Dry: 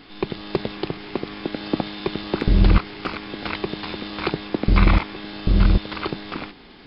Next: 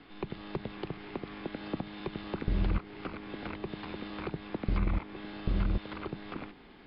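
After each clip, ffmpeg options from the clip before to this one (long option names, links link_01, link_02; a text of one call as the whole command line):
ffmpeg -i in.wav -filter_complex "[0:a]lowpass=2800,acrossover=split=210|630[link_01][link_02][link_03];[link_01]acompressor=threshold=-19dB:ratio=4[link_04];[link_02]acompressor=threshold=-31dB:ratio=4[link_05];[link_03]acompressor=threshold=-35dB:ratio=4[link_06];[link_04][link_05][link_06]amix=inputs=3:normalize=0,volume=-7.5dB" out.wav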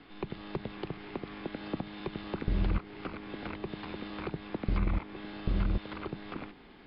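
ffmpeg -i in.wav -af anull out.wav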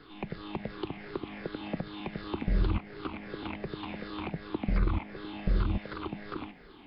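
ffmpeg -i in.wav -af "afftfilt=real='re*pow(10,11/40*sin(2*PI*(0.58*log(max(b,1)*sr/1024/100)/log(2)-(-2.7)*(pts-256)/sr)))':imag='im*pow(10,11/40*sin(2*PI*(0.58*log(max(b,1)*sr/1024/100)/log(2)-(-2.7)*(pts-256)/sr)))':win_size=1024:overlap=0.75" out.wav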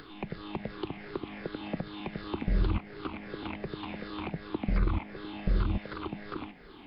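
ffmpeg -i in.wav -af "acompressor=mode=upward:threshold=-44dB:ratio=2.5" out.wav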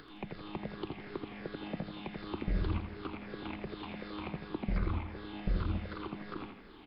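ffmpeg -i in.wav -af "aecho=1:1:83|166|249|332|415|498:0.398|0.195|0.0956|0.0468|0.023|0.0112,volume=-4.5dB" out.wav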